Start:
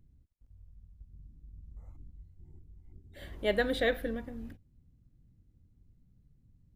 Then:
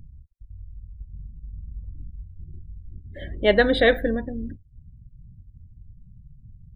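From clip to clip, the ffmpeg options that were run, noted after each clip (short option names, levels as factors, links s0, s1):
-filter_complex "[0:a]asplit=2[s0][s1];[s1]acompressor=mode=upward:threshold=0.0126:ratio=2.5,volume=0.708[s2];[s0][s2]amix=inputs=2:normalize=0,afftdn=nr=29:nf=-42,volume=2.11"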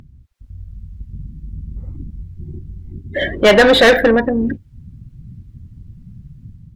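-filter_complex "[0:a]dynaudnorm=f=160:g=5:m=2.37,asplit=2[s0][s1];[s1]highpass=f=720:p=1,volume=20,asoftclip=type=tanh:threshold=0.891[s2];[s0][s2]amix=inputs=2:normalize=0,lowpass=f=2900:p=1,volume=0.501"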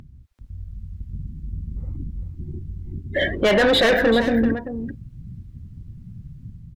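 -af "alimiter=limit=0.316:level=0:latency=1,aecho=1:1:388:0.299,volume=0.841"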